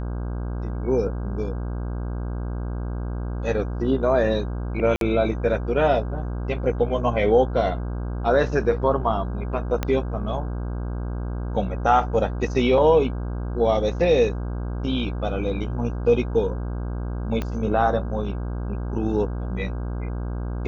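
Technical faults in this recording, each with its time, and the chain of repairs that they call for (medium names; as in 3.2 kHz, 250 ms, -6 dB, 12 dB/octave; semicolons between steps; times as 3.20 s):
buzz 60 Hz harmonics 27 -28 dBFS
4.96–5.01 s: dropout 52 ms
9.83 s: pop -10 dBFS
17.42 s: pop -14 dBFS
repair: de-click; de-hum 60 Hz, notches 27; interpolate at 4.96 s, 52 ms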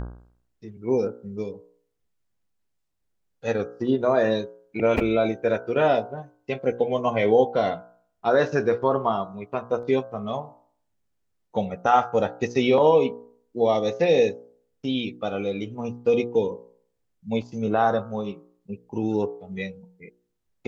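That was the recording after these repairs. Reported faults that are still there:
9.83 s: pop
17.42 s: pop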